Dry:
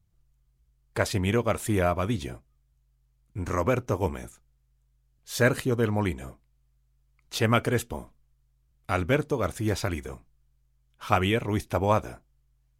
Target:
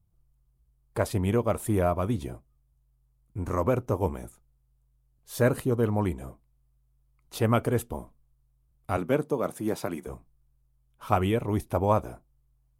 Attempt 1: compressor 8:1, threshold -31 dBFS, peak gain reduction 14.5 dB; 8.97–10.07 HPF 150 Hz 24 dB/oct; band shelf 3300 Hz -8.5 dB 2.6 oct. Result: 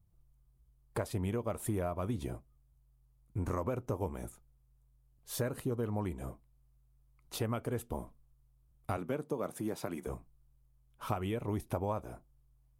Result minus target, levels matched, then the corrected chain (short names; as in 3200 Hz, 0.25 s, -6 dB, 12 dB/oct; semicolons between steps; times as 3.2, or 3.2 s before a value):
compressor: peak gain reduction +14.5 dB
8.97–10.07 HPF 150 Hz 24 dB/oct; band shelf 3300 Hz -8.5 dB 2.6 oct